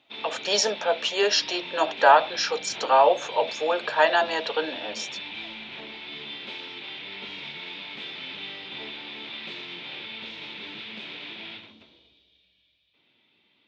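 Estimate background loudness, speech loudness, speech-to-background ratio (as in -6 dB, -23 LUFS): -35.5 LUFS, -23.0 LUFS, 12.5 dB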